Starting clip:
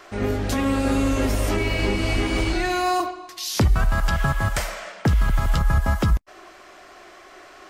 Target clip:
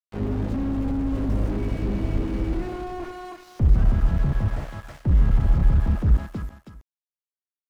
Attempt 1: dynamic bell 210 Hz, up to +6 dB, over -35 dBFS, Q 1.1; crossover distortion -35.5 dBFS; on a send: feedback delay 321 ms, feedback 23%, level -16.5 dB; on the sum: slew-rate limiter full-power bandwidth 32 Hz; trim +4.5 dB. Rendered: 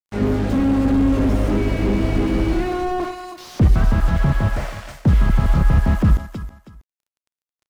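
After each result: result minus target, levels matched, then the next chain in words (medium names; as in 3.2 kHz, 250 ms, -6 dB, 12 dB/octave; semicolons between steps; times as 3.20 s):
crossover distortion: distortion -8 dB; slew-rate limiter: distortion -6 dB
dynamic bell 210 Hz, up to +6 dB, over -35 dBFS, Q 1.1; crossover distortion -27 dBFS; on a send: feedback delay 321 ms, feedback 23%, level -16.5 dB; on the sum: slew-rate limiter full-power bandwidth 32 Hz; trim +4.5 dB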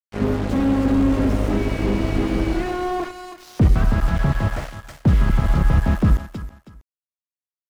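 slew-rate limiter: distortion -7 dB
dynamic bell 210 Hz, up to +6 dB, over -35 dBFS, Q 1.1; crossover distortion -27 dBFS; on a send: feedback delay 321 ms, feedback 23%, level -16.5 dB; on the sum: slew-rate limiter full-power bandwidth 9.5 Hz; trim +4.5 dB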